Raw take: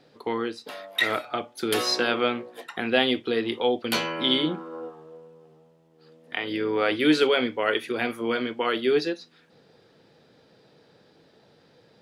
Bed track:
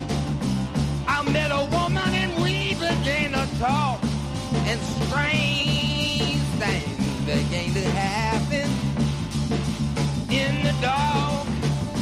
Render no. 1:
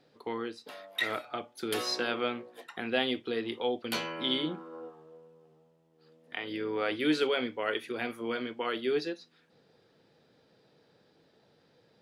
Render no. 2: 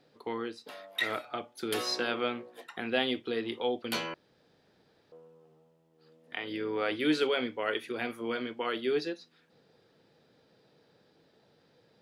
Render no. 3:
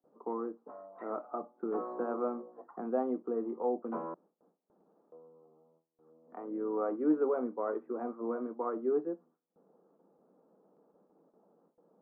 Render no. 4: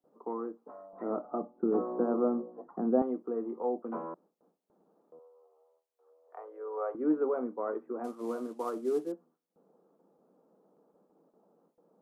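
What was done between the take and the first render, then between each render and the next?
level −7.5 dB
0:04.14–0:05.12: fill with room tone
Chebyshev band-pass filter 180–1,200 Hz, order 4; noise gate with hold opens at −59 dBFS
0:00.93–0:03.02: spectral tilt −4.5 dB per octave; 0:05.19–0:06.95: Butterworth high-pass 430 Hz 48 dB per octave; 0:08.04–0:09.12: variable-slope delta modulation 64 kbit/s

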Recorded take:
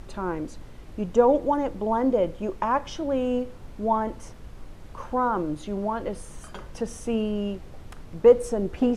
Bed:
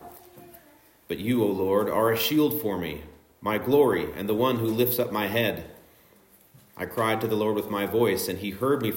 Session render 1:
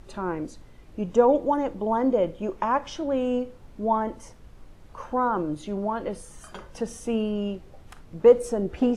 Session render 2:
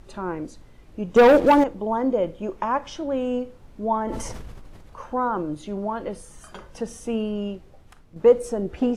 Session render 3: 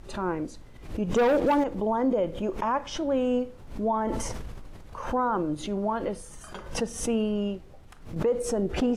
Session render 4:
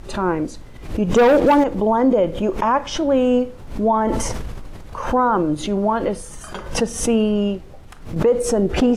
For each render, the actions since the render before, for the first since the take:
noise reduction from a noise print 6 dB
0:01.16–0:01.64: leveller curve on the samples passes 3; 0:04.02–0:05.01: level that may fall only so fast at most 24 dB per second; 0:07.43–0:08.16: fade out, to −7.5 dB
brickwall limiter −17.5 dBFS, peak gain reduction 11 dB; background raised ahead of every attack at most 100 dB per second
level +9 dB

